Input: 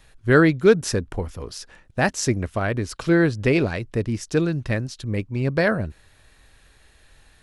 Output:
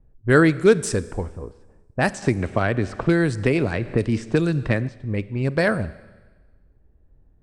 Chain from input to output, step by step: de-esser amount 55%; low-pass opened by the level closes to 320 Hz, open at -16.5 dBFS; bell 8300 Hz +14 dB 0.38 oct; Schroeder reverb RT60 1.3 s, combs from 31 ms, DRR 17 dB; 2.22–4.89 three-band squash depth 100%

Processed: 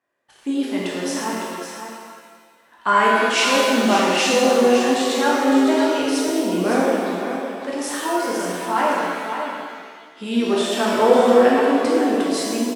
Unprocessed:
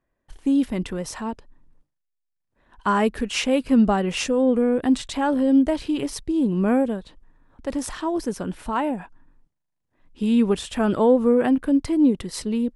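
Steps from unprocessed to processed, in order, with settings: weighting filter A; on a send: echo 0.558 s -8 dB; on the sum: shimmer reverb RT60 1.6 s, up +7 st, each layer -8 dB, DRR -5 dB; gain +1 dB

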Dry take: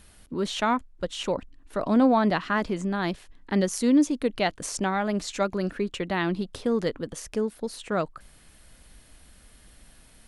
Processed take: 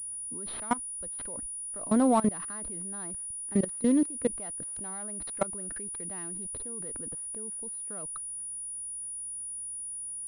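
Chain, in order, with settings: median filter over 15 samples; level quantiser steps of 22 dB; pulse-width modulation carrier 9700 Hz

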